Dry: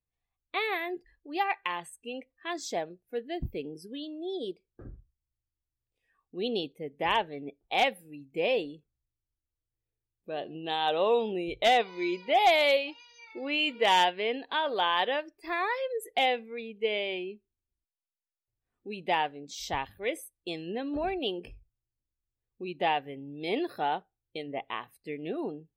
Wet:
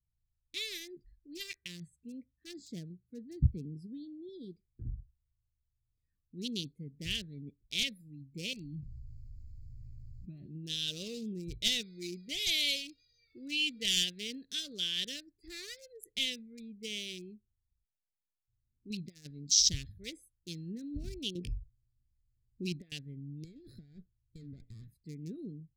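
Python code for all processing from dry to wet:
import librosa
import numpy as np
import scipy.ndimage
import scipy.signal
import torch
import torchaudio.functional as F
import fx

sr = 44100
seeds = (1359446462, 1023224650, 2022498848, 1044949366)

y = fx.chain(x, sr, fx.highpass(hz=68.0, slope=12),
    fx.tilt_eq(slope=-1.5), at=(1.57, 4.29))
y = fx.chain(y, sr, fx.high_shelf(hz=4700.0, db=-11.0),
    fx.fixed_phaser(hz=2400.0, stages=8),
    fx.env_flatten(amount_pct=70), at=(8.53, 10.46))
y = fx.chain(y, sr, fx.lowpass_res(hz=5600.0, q=3.9),
    fx.over_compress(threshold_db=-32.0, ratio=-0.5), at=(18.9, 19.73))
y = fx.chain(y, sr, fx.peak_eq(hz=1100.0, db=7.0, octaves=2.9),
    fx.over_compress(threshold_db=-33.0, ratio=-1.0), at=(21.35, 22.92))
y = fx.chain(y, sr, fx.over_compress(threshold_db=-38.0, ratio=-1.0),
    fx.tube_stage(drive_db=39.0, bias=0.35),
    fx.notch(hz=1400.0, q=15.0), at=(23.44, 24.94))
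y = fx.wiener(y, sr, points=15)
y = scipy.signal.sosfilt(scipy.signal.cheby1(2, 1.0, [130.0, 5700.0], 'bandstop', fs=sr, output='sos'), y)
y = fx.dynamic_eq(y, sr, hz=3300.0, q=0.96, threshold_db=-54.0, ratio=4.0, max_db=4)
y = F.gain(torch.from_numpy(y), 7.5).numpy()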